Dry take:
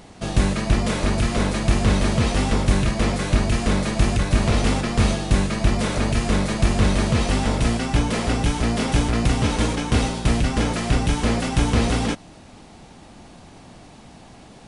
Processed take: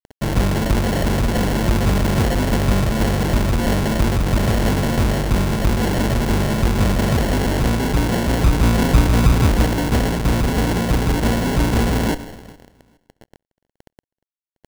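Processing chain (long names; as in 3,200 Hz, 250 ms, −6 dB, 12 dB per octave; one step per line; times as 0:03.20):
0:08.44–0:09.62: low-shelf EQ 220 Hz +8.5 dB
in parallel at −1 dB: comparator with hysteresis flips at −26.5 dBFS
on the sum: four-comb reverb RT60 1.4 s, combs from 28 ms, DRR 13.5 dB
bit reduction 6 bits
on a send: repeating echo 413 ms, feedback 22%, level −24 dB
on the sum: decimation without filtering 36×
level −2.5 dB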